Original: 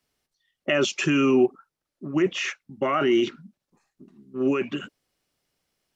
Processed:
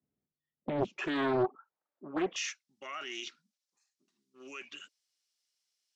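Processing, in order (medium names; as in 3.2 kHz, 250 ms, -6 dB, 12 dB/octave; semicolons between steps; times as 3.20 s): band-pass filter 190 Hz, Q 1.4, from 0.98 s 860 Hz, from 2.36 s 5.7 kHz; loudspeaker Doppler distortion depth 0.81 ms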